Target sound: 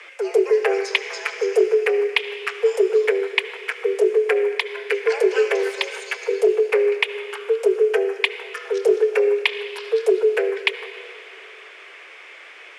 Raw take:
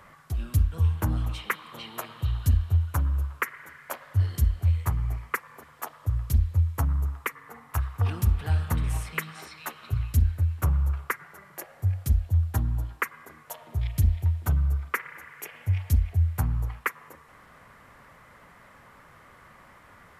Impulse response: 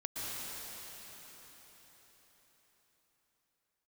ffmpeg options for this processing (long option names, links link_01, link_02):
-filter_complex "[0:a]asetrate=69678,aresample=44100,asplit=2[link_01][link_02];[1:a]atrim=start_sample=2205,asetrate=74970,aresample=44100[link_03];[link_02][link_03]afir=irnorm=-1:irlink=0,volume=-10dB[link_04];[link_01][link_04]amix=inputs=2:normalize=0,afreqshift=300,highpass=410,equalizer=frequency=580:width_type=q:width=4:gain=-3,equalizer=frequency=1600:width_type=q:width=4:gain=5,equalizer=frequency=2400:width_type=q:width=4:gain=6,equalizer=frequency=3800:width_type=q:width=4:gain=-7,lowpass=frequency=9000:width=0.5412,lowpass=frequency=9000:width=1.3066,volume=7dB"